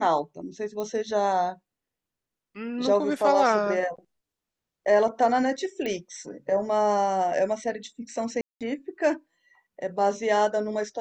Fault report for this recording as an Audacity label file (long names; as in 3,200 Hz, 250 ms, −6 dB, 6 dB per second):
0.800000	0.800000	click −20 dBFS
5.860000	5.860000	click −20 dBFS
8.410000	8.610000	drop-out 197 ms